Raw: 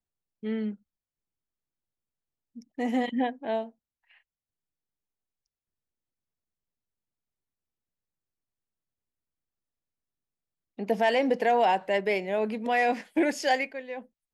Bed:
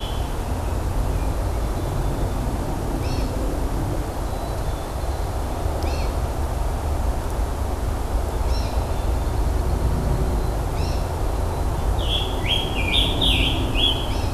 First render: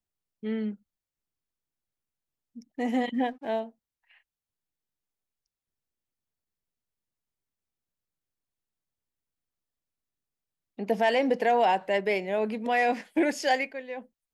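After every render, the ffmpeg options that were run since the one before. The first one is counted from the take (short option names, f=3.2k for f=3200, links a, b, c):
-filter_complex "[0:a]asettb=1/sr,asplit=3[a][b][c];[a]atrim=end=3.144[d];[b]atrim=start=3.14:end=3.6,asetpts=PTS-STARTPTS,afade=t=in:d=0.004:c=qsin,afade=t=out:st=0.456:d=0.004:c=qsin,aeval=exprs='sgn(val(0))*max(abs(val(0))-0.00126,0)':c=same[e];[c]atrim=start=3.596[f];[d][e]acrossfade=d=0.004:c1=hsin:c2=qsin[g];[g][f]acrossfade=d=0.004:c1=qsin:c2=hsin"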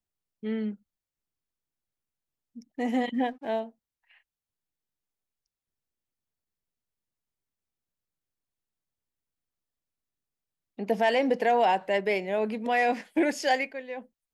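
-af anull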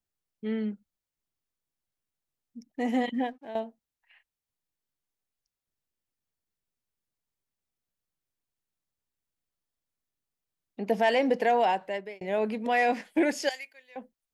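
-filter_complex "[0:a]asettb=1/sr,asplit=3[a][b][c];[a]atrim=end=13.494[d];[b]atrim=start=13.49:end=13.96,asetpts=PTS-STARTPTS,afade=t=in:d=0.004:c=qsin,afade=t=out:st=0.466:d=0.004:c=qsin,aderivative[e];[c]atrim=start=13.956[f];[d][e]acrossfade=d=0.004:c1=hsin:c2=qsin[g];[g][f]acrossfade=d=0.004:c1=qsin:c2=hsin,asplit=3[h][i][j];[h]atrim=end=3.55,asetpts=PTS-STARTPTS,afade=t=out:st=3.08:d=0.47:silence=0.237137[k];[i]atrim=start=3.55:end=12.21,asetpts=PTS-STARTPTS,afade=t=in:d=0.004:c=hsin:silence=0.237137,afade=t=out:st=7.77:d=0.89:c=qsin[l];[j]atrim=start=12.21,asetpts=PTS-STARTPTS,afade=t=in:d=0.004:c=hsin[m];[k][l][m]concat=n=3:v=0:a=1"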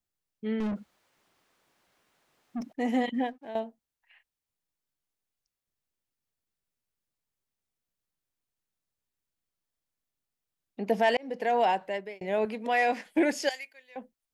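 -filter_complex "[0:a]asettb=1/sr,asplit=3[a][b][c];[a]atrim=end=0.604[d];[b]atrim=start=0.6:end=2.73,asetpts=PTS-STARTPTS,afade=t=in:d=0.004:c=qsin,afade=t=out:st=2.126:d=0.004:c=qsin,asplit=2[e][f];[f]highpass=f=720:p=1,volume=37dB,asoftclip=type=tanh:threshold=-24.5dB[g];[e][g]amix=inputs=2:normalize=0,lowpass=f=1.2k:p=1,volume=-6dB[h];[c]atrim=start=2.726[i];[d][h]acrossfade=d=0.004:c1=hsin:c2=qsin[j];[j][i]acrossfade=d=0.004:c1=qsin:c2=hsin,asettb=1/sr,asplit=3[k][l][m];[k]atrim=end=12.454[n];[l]atrim=start=12.45:end=13.06,asetpts=PTS-STARTPTS,afade=t=in:d=0.004:c=qsin,afade=t=out:st=0.606:d=0.004:c=qsin,highpass=f=320:p=1[o];[m]atrim=start=13.056[p];[n][o]acrossfade=d=0.004:c1=hsin:c2=qsin[q];[q][p]acrossfade=d=0.004:c1=qsin:c2=hsin,asplit=2[r][s];[r]atrim=end=11.17,asetpts=PTS-STARTPTS,afade=t=out:st=11.166:d=0.004:c=hsin[t];[s]atrim=start=11.17,asetpts=PTS-STARTPTS,afade=t=in:d=0.46[u];[t][u]concat=n=2:v=0:a=1"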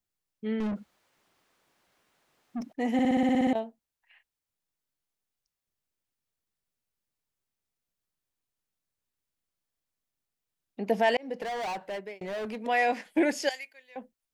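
-filter_complex "[0:a]asettb=1/sr,asplit=3[a][b][c];[a]atrim=end=11.424[d];[b]atrim=start=11.42:end=12.66,asetpts=PTS-STARTPTS,afade=t=in:d=0.004:c=qsin,afade=t=out:st=1.236:d=0.004:c=qsin,volume=31.5dB,asoftclip=hard,volume=-31.5dB[e];[c]atrim=start=12.656[f];[d][e]acrossfade=d=0.004:c1=hsin:c2=qsin[g];[g][f]acrossfade=d=0.004:c1=qsin:c2=hsin,asplit=11[h][i][j][k][l][m][n][o][p][q][r];[h]atrim=end=2.992[s];[i]atrim=start=2.928:end=2.992[t];[j]atrim=start=2.928:end=2.992[u];[k]atrim=start=2.928:end=2.992[v];[l]atrim=start=2.928:end=2.992[w];[m]atrim=start=2.928:end=2.992[x];[n]atrim=start=2.928:end=2.992[y];[o]atrim=start=2.928:end=2.992[z];[p]atrim=start=2.928:end=2.992[aa];[q]atrim=start=2.928:end=2.992[ab];[r]atrim=start=3.528[ac];[s][t]acrossfade=d=0.004:c1=hsin:c2=hsin[ad];[ad][u]acrossfade=d=0.004:c1=hsin:c2=hsin[ae];[ae][v]acrossfade=d=0.004:c1=hsin:c2=hsin[af];[af][w]acrossfade=d=0.004:c1=hsin:c2=hsin[ag];[ag][x]acrossfade=d=0.004:c1=hsin:c2=hsin[ah];[ah][y]acrossfade=d=0.004:c1=hsin:c2=hsin[ai];[ai][z]acrossfade=d=0.004:c1=hsin:c2=hsin[aj];[aj][aa]acrossfade=d=0.004:c1=hsin:c2=hsin[ak];[ak][ab]acrossfade=d=0.004:c1=hsin:c2=hsin[al];[al][ac]acrossfade=d=0.004:c1=hsin:c2=hsin"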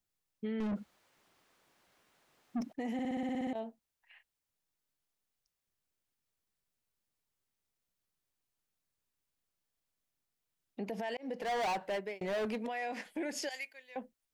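-af "acompressor=threshold=-26dB:ratio=6,alimiter=level_in=6dB:limit=-24dB:level=0:latency=1:release=82,volume=-6dB"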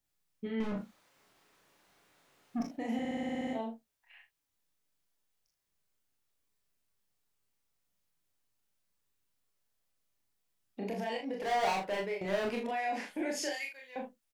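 -filter_complex "[0:a]asplit=2[a][b];[b]adelay=36,volume=-5dB[c];[a][c]amix=inputs=2:normalize=0,asplit=2[d][e];[e]aecho=0:1:26|43:0.531|0.531[f];[d][f]amix=inputs=2:normalize=0"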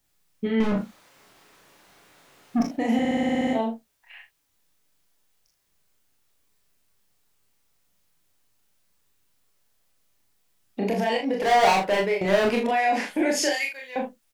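-af "volume=12dB"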